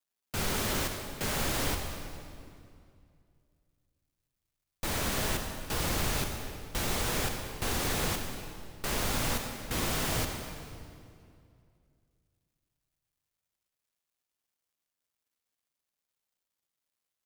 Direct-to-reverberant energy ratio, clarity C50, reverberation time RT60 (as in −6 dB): 4.0 dB, 4.5 dB, 2.4 s